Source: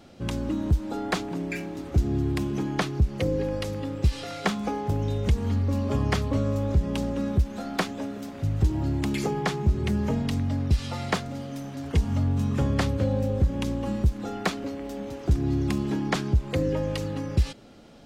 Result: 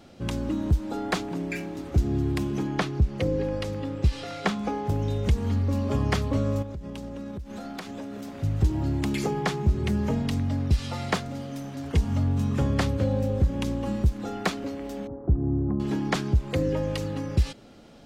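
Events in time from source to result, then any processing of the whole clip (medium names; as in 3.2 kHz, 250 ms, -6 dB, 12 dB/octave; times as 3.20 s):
2.67–4.85 s: treble shelf 7.9 kHz -8.5 dB
6.62–8.32 s: compression 12:1, threshold -32 dBFS
15.07–15.80 s: Gaussian low-pass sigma 8.4 samples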